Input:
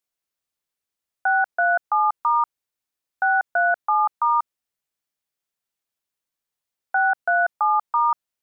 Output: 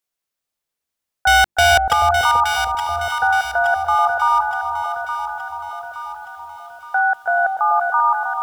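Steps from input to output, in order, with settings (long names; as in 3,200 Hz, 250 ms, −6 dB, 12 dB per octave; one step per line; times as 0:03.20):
mains-hum notches 50/100/150/200/250/300/350 Hz
0:01.27–0:01.93: leveller curve on the samples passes 5
delay that swaps between a low-pass and a high-pass 435 ms, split 970 Hz, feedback 69%, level −3 dB
feedback echo at a low word length 314 ms, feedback 55%, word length 8 bits, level −11.5 dB
level +2.5 dB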